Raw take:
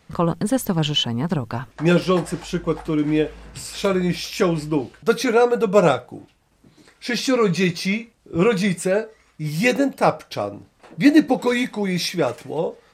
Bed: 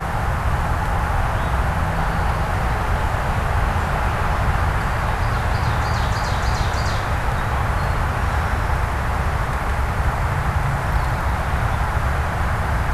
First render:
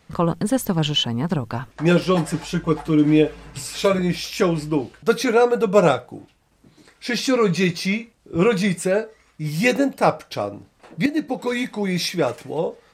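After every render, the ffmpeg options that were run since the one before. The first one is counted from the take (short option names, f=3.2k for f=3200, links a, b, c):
-filter_complex "[0:a]asettb=1/sr,asplit=3[a][b][c];[a]atrim=end=2.144[d];[b]atrim=start=2.14:end=3.99,asetpts=PTS-STARTPTS,afade=t=in:d=0.004:c=qsin,afade=t=out:st=1.846:d=0.004:c=qsin,aecho=1:1:6.9:0.75,atrim=end_sample=81585[e];[c]atrim=start=3.986[f];[d][e]acrossfade=d=0.004:c1=hsin:c2=qsin[g];[g][f]acrossfade=d=0.004:c1=qsin:c2=hsin,asplit=2[h][i];[h]atrim=end=11.06,asetpts=PTS-STARTPTS,afade=t=out:st=11.056:d=0.004:c=hsin:silence=0.237137[j];[i]atrim=start=11.06,asetpts=PTS-STARTPTS,afade=t=in:d=0.82:silence=0.237137[k];[j][k]concat=n=2:v=0:a=1"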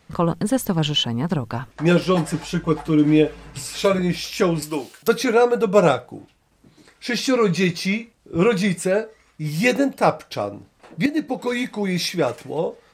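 -filter_complex "[0:a]asettb=1/sr,asplit=3[a][b][c];[a]atrim=end=4.624[d];[b]atrim=start=4.62:end=5.08,asetpts=PTS-STARTPTS,afade=t=in:d=0.004:c=qsin,afade=t=out:st=0.456:d=0.004:c=qsin,aemphasis=mode=production:type=riaa[e];[c]atrim=start=5.076[f];[d][e]acrossfade=d=0.004:c1=hsin:c2=qsin[g];[g][f]acrossfade=d=0.004:c1=qsin:c2=hsin"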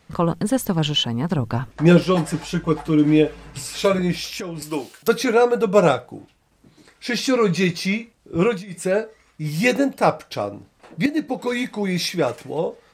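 -filter_complex "[0:a]asettb=1/sr,asplit=3[a][b][c];[a]atrim=end=1.384[d];[b]atrim=start=1.38:end=2.03,asetpts=PTS-STARTPTS,afade=t=in:d=0.004:c=qsin,afade=t=out:st=0.646:d=0.004:c=qsin,lowshelf=f=420:g=5.5[e];[c]atrim=start=2.026[f];[d][e]acrossfade=d=0.004:c1=hsin:c2=qsin[g];[g][f]acrossfade=d=0.004:c1=qsin:c2=hsin,asettb=1/sr,asplit=3[h][i][j];[h]atrim=end=4.284[k];[i]atrim=start=4.28:end=4.69,asetpts=PTS-STARTPTS,afade=t=in:d=0.004:c=qsin,afade=t=out:st=0.406:d=0.004:c=qsin,acompressor=threshold=-26dB:ratio=16:attack=3.2:release=140:knee=1:detection=peak[l];[j]atrim=start=4.686[m];[k][l]acrossfade=d=0.004:c1=hsin:c2=qsin[n];[n][m]acrossfade=d=0.004:c1=qsin:c2=hsin,asplit=3[o][p][q];[o]atrim=end=8.65,asetpts=PTS-STARTPTS,afade=t=out:st=8.35:d=0.3:c=qsin:silence=0.0749894[r];[p]atrim=start=8.65:end=8.67,asetpts=PTS-STARTPTS,volume=-22.5dB[s];[q]atrim=start=8.67,asetpts=PTS-STARTPTS,afade=t=in:d=0.3:c=qsin:silence=0.0749894[t];[r][s][t]concat=n=3:v=0:a=1"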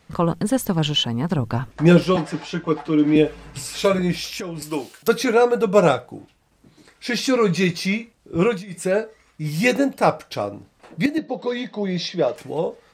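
-filter_complex "[0:a]asettb=1/sr,asplit=3[a][b][c];[a]atrim=end=2.164[d];[b]atrim=start=2.16:end=3.16,asetpts=PTS-STARTPTS,afade=t=in:d=0.004:c=qsin,afade=t=out:st=0.996:d=0.004:c=qsin,acrossover=split=170 6300:gain=0.2 1 0.112[e][f][g];[e][f][g]amix=inputs=3:normalize=0[h];[c]atrim=start=3.156[i];[d][h]acrossfade=d=0.004:c1=hsin:c2=qsin[j];[j][i]acrossfade=d=0.004:c1=qsin:c2=hsin,asettb=1/sr,asplit=3[k][l][m];[k]atrim=end=11.184[n];[l]atrim=start=11.18:end=12.36,asetpts=PTS-STARTPTS,afade=t=in:d=0.004:c=qsin,afade=t=out:st=1.176:d=0.004:c=qsin,highpass=f=110:w=0.5412,highpass=f=110:w=1.3066,equalizer=f=120:t=q:w=4:g=-9,equalizer=f=270:t=q:w=4:g=-5,equalizer=f=610:t=q:w=4:g=4,equalizer=f=860:t=q:w=4:g=-4,equalizer=f=1.4k:t=q:w=4:g=-8,equalizer=f=2.3k:t=q:w=4:g=-9,lowpass=f=4.9k:w=0.5412,lowpass=f=4.9k:w=1.3066[o];[m]atrim=start=12.356[p];[n][o]acrossfade=d=0.004:c1=hsin:c2=qsin[q];[q][p]acrossfade=d=0.004:c1=qsin:c2=hsin"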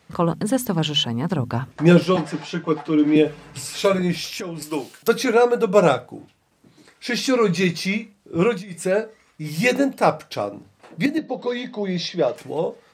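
-af "highpass=82,bandreject=f=50:t=h:w=6,bandreject=f=100:t=h:w=6,bandreject=f=150:t=h:w=6,bandreject=f=200:t=h:w=6,bandreject=f=250:t=h:w=6"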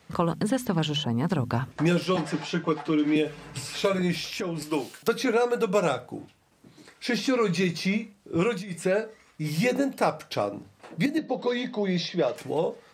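-filter_complex "[0:a]acrossover=split=1300|4700[a][b][c];[a]acompressor=threshold=-22dB:ratio=4[d];[b]acompressor=threshold=-33dB:ratio=4[e];[c]acompressor=threshold=-42dB:ratio=4[f];[d][e][f]amix=inputs=3:normalize=0"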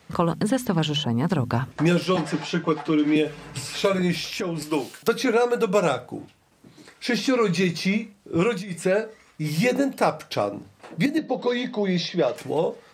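-af "volume=3dB"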